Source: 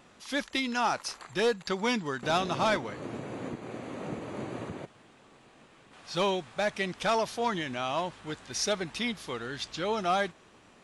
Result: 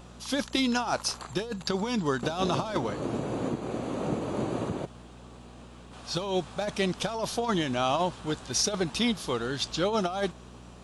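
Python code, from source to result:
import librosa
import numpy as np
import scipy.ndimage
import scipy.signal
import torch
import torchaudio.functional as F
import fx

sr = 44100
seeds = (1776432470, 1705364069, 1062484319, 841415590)

y = fx.peak_eq(x, sr, hz=2000.0, db=-9.0, octaves=0.78)
y = fx.over_compress(y, sr, threshold_db=-31.0, ratio=-0.5)
y = fx.dmg_buzz(y, sr, base_hz=60.0, harmonics=4, level_db=-55.0, tilt_db=-3, odd_only=False)
y = F.gain(torch.from_numpy(y), 5.0).numpy()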